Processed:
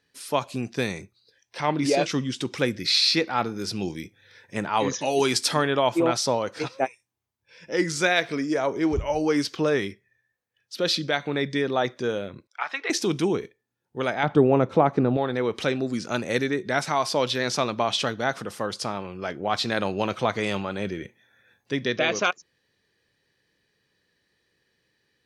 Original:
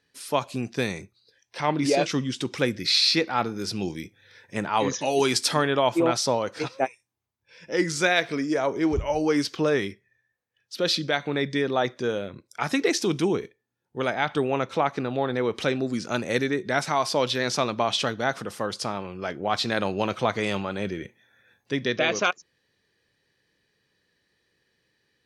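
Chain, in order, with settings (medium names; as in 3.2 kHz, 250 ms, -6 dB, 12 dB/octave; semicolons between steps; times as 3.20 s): 12.47–12.90 s: Butterworth band-pass 1.6 kHz, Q 0.66; 14.23–15.17 s: tilt shelf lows +9 dB, about 1.2 kHz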